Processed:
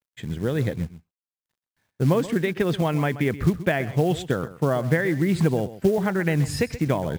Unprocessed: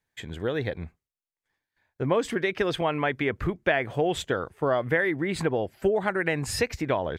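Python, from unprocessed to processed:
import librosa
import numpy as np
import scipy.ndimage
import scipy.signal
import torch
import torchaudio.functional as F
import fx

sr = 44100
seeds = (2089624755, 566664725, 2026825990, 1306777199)

p1 = fx.peak_eq(x, sr, hz=160.0, db=13.0, octaves=1.7)
p2 = np.sign(p1) * np.maximum(np.abs(p1) - 10.0 ** (-39.5 / 20.0), 0.0)
p3 = p1 + (p2 * 10.0 ** (-10.0 / 20.0))
p4 = fx.quant_companded(p3, sr, bits=6)
p5 = p4 + 10.0 ** (-15.0 / 20.0) * np.pad(p4, (int(129 * sr / 1000.0), 0))[:len(p4)]
y = p5 * 10.0 ** (-4.0 / 20.0)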